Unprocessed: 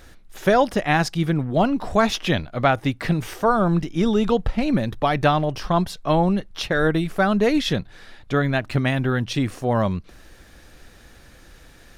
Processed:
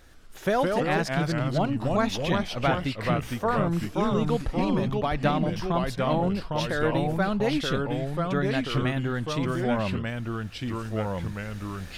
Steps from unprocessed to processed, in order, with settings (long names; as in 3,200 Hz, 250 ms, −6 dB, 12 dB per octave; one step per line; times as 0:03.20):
camcorder AGC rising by 5.6 dB per second
delay with pitch and tempo change per echo 107 ms, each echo −2 semitones, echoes 2
level −7.5 dB